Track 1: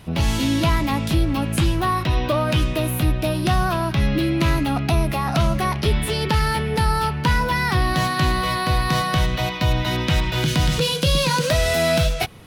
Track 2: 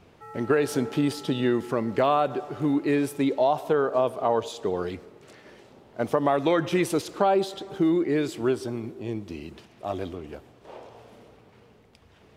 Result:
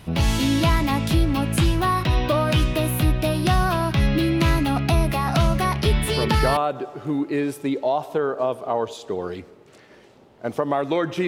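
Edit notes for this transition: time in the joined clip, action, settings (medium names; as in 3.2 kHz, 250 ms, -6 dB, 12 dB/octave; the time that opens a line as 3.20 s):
track 1
6.34 s: go over to track 2 from 1.89 s, crossfade 0.46 s logarithmic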